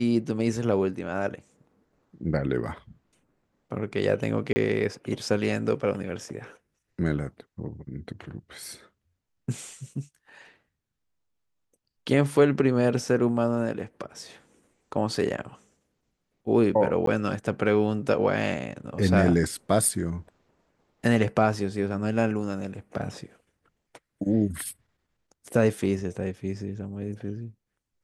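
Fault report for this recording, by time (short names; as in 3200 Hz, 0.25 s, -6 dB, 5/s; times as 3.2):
4.53–4.56 gap 30 ms
17.06–17.07 gap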